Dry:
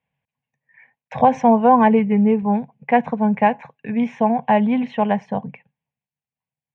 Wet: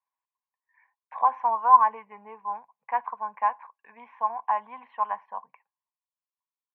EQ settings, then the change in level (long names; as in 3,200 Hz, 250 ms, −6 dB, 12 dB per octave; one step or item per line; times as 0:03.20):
dynamic equaliser 1,300 Hz, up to +6 dB, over −36 dBFS, Q 3.6
four-pole ladder band-pass 1,100 Hz, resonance 80%
high-frequency loss of the air 110 metres
0.0 dB